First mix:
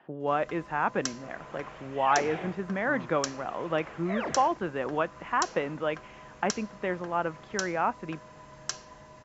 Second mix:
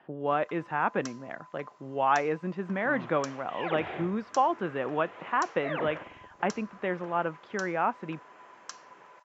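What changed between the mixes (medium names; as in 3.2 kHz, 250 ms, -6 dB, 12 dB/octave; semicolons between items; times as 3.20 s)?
first sound: add ladder high-pass 820 Hz, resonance 55%; second sound: entry +1.55 s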